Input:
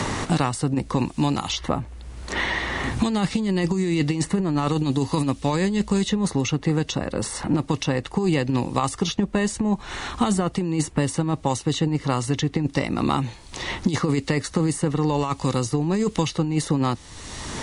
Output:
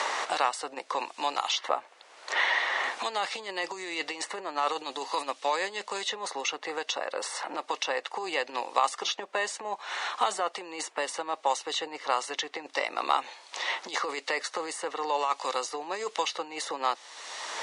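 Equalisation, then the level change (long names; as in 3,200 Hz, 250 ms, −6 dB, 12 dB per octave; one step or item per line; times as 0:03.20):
high-pass filter 560 Hz 24 dB per octave
Bessel low-pass filter 5,500 Hz, order 2
0.0 dB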